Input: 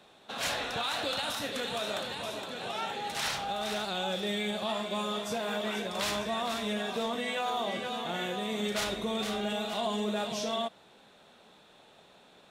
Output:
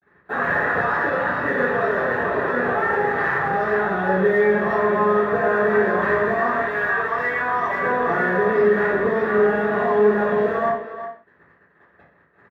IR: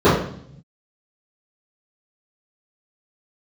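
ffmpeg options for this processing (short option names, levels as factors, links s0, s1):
-filter_complex "[0:a]asettb=1/sr,asplit=3[s0][s1][s2];[s0]atrim=end=6.604[s3];[s1]atrim=start=6.6:end=7.82,asetpts=PTS-STARTPTS,afade=t=in:d=0.004:c=qsin,afade=t=out:st=1.216:d=0.004:c=qsin,highpass=930[s4];[s2]atrim=start=7.816[s5];[s3][s4]acrossfade=d=0.004:c1=hsin:c2=qsin[s6];[s6][s5]acrossfade=d=0.004:c1=qsin:c2=hsin,acompressor=threshold=0.00891:ratio=2.5,asplit=2[s7][s8];[s8]highpass=f=720:p=1,volume=3.98,asoftclip=type=tanh:threshold=0.0316[s9];[s7][s9]amix=inputs=2:normalize=0,lowpass=f=1400:p=1,volume=0.501,flanger=delay=7.4:depth=1:regen=89:speed=0.6:shape=triangular,acrusher=bits=7:mix=0:aa=0.5,lowpass=f=1800:t=q:w=9.6,acrusher=bits=5:mode=log:mix=0:aa=0.000001,asplit=2[s10][s11];[s11]adelay=360,highpass=300,lowpass=3400,asoftclip=type=hard:threshold=0.0178,volume=0.316[s12];[s10][s12]amix=inputs=2:normalize=0[s13];[1:a]atrim=start_sample=2205,afade=t=out:st=0.25:d=0.01,atrim=end_sample=11466[s14];[s13][s14]afir=irnorm=-1:irlink=0,volume=0.422"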